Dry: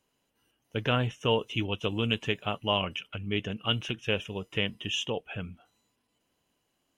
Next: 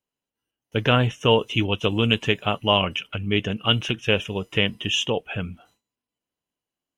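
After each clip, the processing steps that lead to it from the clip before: gate with hold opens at -51 dBFS; gain +8 dB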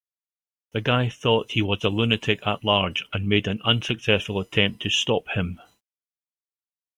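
vocal rider within 4 dB 0.5 s; bit-crush 12-bit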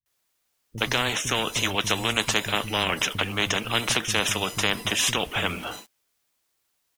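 bands offset in time lows, highs 60 ms, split 170 Hz; spectral compressor 4:1; gain -2 dB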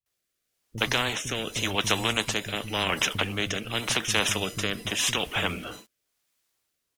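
rotary speaker horn 0.9 Hz

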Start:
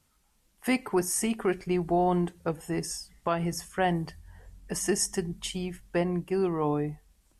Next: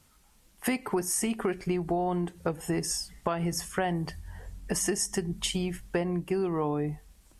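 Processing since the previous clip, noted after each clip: compressor 6:1, threshold -33 dBFS, peak gain reduction 11.5 dB; gain +7 dB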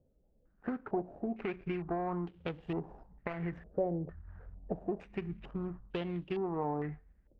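median filter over 41 samples; stepped low-pass 2.2 Hz 540–3100 Hz; gain -7 dB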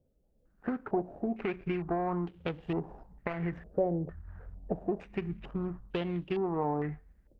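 AGC gain up to 5 dB; gain -1.5 dB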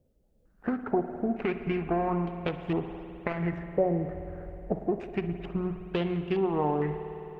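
reverb RT60 3.5 s, pre-delay 52 ms, DRR 8.5 dB; gain +3.5 dB

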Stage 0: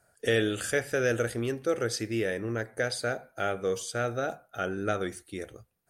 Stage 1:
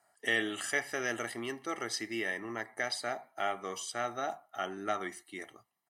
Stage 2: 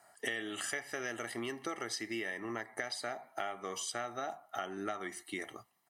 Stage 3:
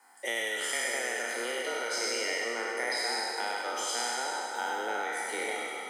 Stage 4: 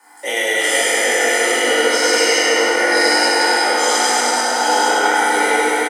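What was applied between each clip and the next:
HPF 440 Hz 12 dB/oct; high shelf 4200 Hz -8 dB; comb 1 ms, depth 85%
compressor 6:1, threshold -44 dBFS, peak gain reduction 17.5 dB; gain +8 dB
spectral trails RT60 2.37 s; frequency shift +120 Hz; split-band echo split 910 Hz, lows 0.607 s, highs 0.101 s, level -4 dB
reverse delay 0.545 s, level -5 dB; doubler 20 ms -5 dB; FDN reverb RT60 3.9 s, high-frequency decay 0.7×, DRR -5.5 dB; gain +8.5 dB

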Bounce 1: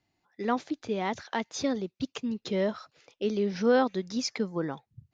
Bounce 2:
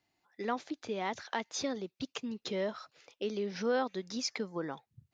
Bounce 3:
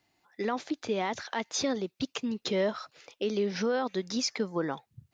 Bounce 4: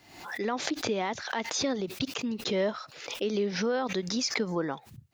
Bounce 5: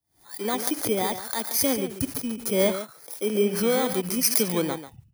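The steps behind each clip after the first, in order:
compressor 1.5:1, threshold -34 dBFS, peak gain reduction 6 dB; low shelf 260 Hz -9 dB
limiter -26 dBFS, peak gain reduction 8.5 dB; gain +6.5 dB
backwards sustainer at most 74 dB/s
FFT order left unsorted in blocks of 16 samples; echo 0.141 s -8 dB; three-band expander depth 100%; gain +4.5 dB

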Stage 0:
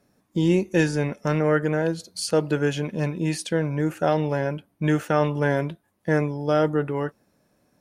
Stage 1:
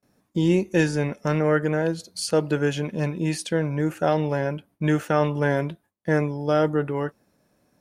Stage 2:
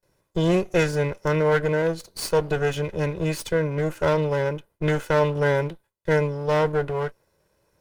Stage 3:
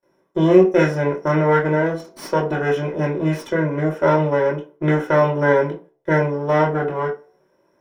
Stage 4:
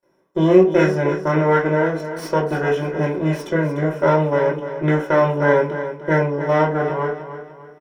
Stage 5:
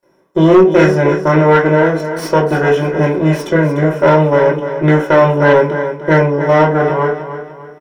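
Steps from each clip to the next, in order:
gate with hold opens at -56 dBFS
minimum comb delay 2 ms
reverb RT60 0.40 s, pre-delay 3 ms, DRR -0.5 dB; gain -9 dB
feedback echo 0.298 s, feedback 38%, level -11 dB
sine folder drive 5 dB, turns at -1 dBFS; gain -1 dB

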